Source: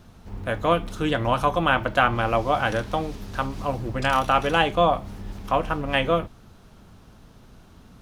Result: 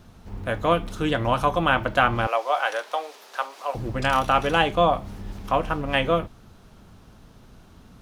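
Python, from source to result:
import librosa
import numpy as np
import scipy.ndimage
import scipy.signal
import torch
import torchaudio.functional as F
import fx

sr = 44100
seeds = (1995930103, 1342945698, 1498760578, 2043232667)

y = fx.highpass(x, sr, hz=520.0, slope=24, at=(2.27, 3.75))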